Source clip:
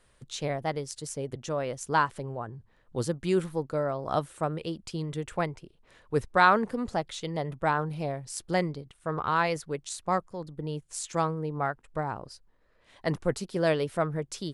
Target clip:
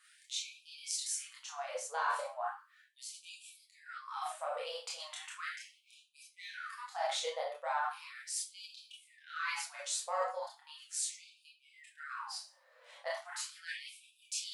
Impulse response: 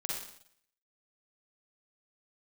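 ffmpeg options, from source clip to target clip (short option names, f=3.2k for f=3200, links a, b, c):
-filter_complex "[0:a]asplit=2[a][b];[b]asoftclip=type=tanh:threshold=-18.5dB,volume=-6.5dB[c];[a][c]amix=inputs=2:normalize=0,adynamicequalizer=threshold=0.00282:dfrequency=110:dqfactor=6.2:tfrequency=110:tqfactor=6.2:attack=5:release=100:ratio=0.375:range=1.5:mode=boostabove:tftype=bell[d];[1:a]atrim=start_sample=2205,asetrate=83790,aresample=44100[e];[d][e]afir=irnorm=-1:irlink=0,flanger=delay=6.9:depth=3.4:regen=-23:speed=0.66:shape=triangular,areverse,acompressor=threshold=-40dB:ratio=10,areverse,afftfilt=real='re*gte(b*sr/1024,440*pow(2400/440,0.5+0.5*sin(2*PI*0.37*pts/sr)))':imag='im*gte(b*sr/1024,440*pow(2400/440,0.5+0.5*sin(2*PI*0.37*pts/sr)))':win_size=1024:overlap=0.75,volume=9.5dB"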